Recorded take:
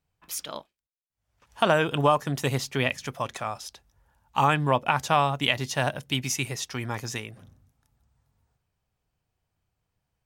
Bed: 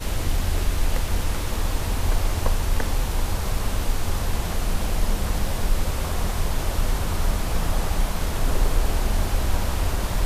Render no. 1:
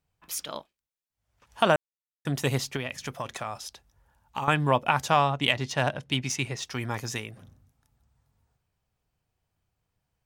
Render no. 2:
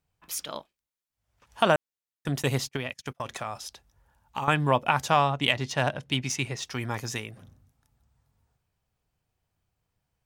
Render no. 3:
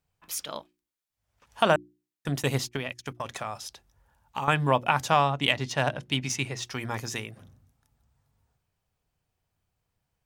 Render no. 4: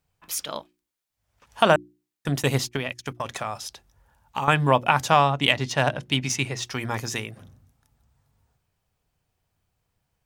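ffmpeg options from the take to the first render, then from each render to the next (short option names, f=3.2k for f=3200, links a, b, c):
-filter_complex "[0:a]asettb=1/sr,asplit=3[a][b][c];[a]atrim=end=2.764[d];[b]atrim=start=2.76:end=4.48,asetpts=PTS-STARTPTS,afade=t=in:d=0.004:c=qsin,afade=t=out:st=1.716:d=0.004:c=qsin,acompressor=threshold=-27dB:ratio=6:attack=3.2:release=140:knee=1:detection=peak[e];[c]atrim=start=4.476[f];[d][e]acrossfade=d=0.004:c1=hsin:c2=qsin[g];[g][f]acrossfade=d=0.004:c1=qsin:c2=hsin,asettb=1/sr,asplit=3[h][i][j];[h]atrim=end=5.104[k];[i]atrim=start=5.1:end=6.65,asetpts=PTS-STARTPTS,afade=t=in:d=0.004:c=qsin,afade=t=out:st=1.546:d=0.004:c=qsin,adynamicsmooth=sensitivity=2.5:basefreq=5.7k[l];[j]atrim=start=6.646[m];[k][l]acrossfade=d=0.004:c1=hsin:c2=qsin[n];[n][m]acrossfade=d=0.004:c1=qsin:c2=hsin,asplit=3[o][p][q];[o]atrim=end=1.76,asetpts=PTS-STARTPTS,afade=t=out:st=1.756:d=0.004:c=hsin[r];[p]atrim=start=1.76:end=2.25,asetpts=PTS-STARTPTS,volume=0[s];[q]atrim=start=2.25,asetpts=PTS-STARTPTS,afade=t=in:d=0.004:c=hsin[t];[r][s][t]concat=n=3:v=0:a=1"
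-filter_complex "[0:a]asettb=1/sr,asplit=3[a][b][c];[a]atrim=end=2.284[d];[b]atrim=start=2.28:end=3.26,asetpts=PTS-STARTPTS,afade=t=in:d=0.004:c=qsin,afade=t=out:st=0.976:d=0.004:c=qsin,agate=range=-29dB:threshold=-39dB:ratio=16:release=100:detection=peak[e];[c]atrim=start=3.256[f];[d][e]acrossfade=d=0.004:c1=hsin:c2=qsin[g];[g][f]acrossfade=d=0.004:c1=qsin:c2=hsin"
-af "bandreject=f=60:t=h:w=6,bandreject=f=120:t=h:w=6,bandreject=f=180:t=h:w=6,bandreject=f=240:t=h:w=6,bandreject=f=300:t=h:w=6,bandreject=f=360:t=h:w=6"
-af "volume=4dB"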